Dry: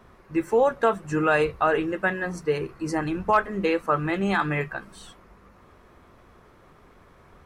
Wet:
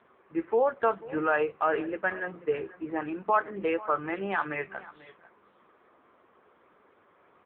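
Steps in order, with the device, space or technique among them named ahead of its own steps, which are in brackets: 4.06–4.92 s: dynamic bell 260 Hz, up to -7 dB, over -47 dBFS, Q 4.4; satellite phone (band-pass 300–3100 Hz; delay 489 ms -18.5 dB; trim -3 dB; AMR-NB 6.7 kbps 8 kHz)

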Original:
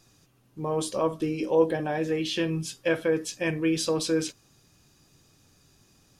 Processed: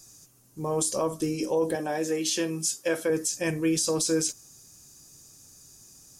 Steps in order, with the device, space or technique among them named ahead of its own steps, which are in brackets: over-bright horn tweeter (resonant high shelf 4.7 kHz +13 dB, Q 1.5; peak limiter -16.5 dBFS, peak gain reduction 10 dB); 1.75–3.10 s: high-pass 220 Hz 12 dB/octave

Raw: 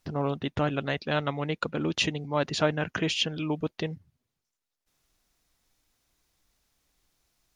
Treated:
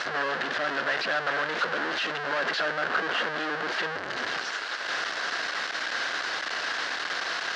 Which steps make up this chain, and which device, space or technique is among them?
2.68–3.36 s: elliptic low-pass 1.4 kHz; home computer beeper (one-bit comparator; cabinet simulation 610–4100 Hz, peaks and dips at 890 Hz -4 dB, 1.6 kHz +9 dB, 2.4 kHz -6 dB, 3.5 kHz -5 dB); trim +9 dB

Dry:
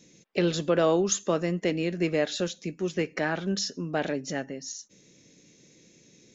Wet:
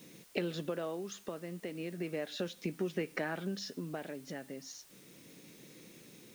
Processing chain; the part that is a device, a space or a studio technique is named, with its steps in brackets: medium wave at night (band-pass 110–4000 Hz; compression, threshold -35 dBFS, peak gain reduction 15.5 dB; tremolo 0.35 Hz, depth 57%; whistle 9 kHz -73 dBFS; white noise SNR 21 dB); trim +3 dB

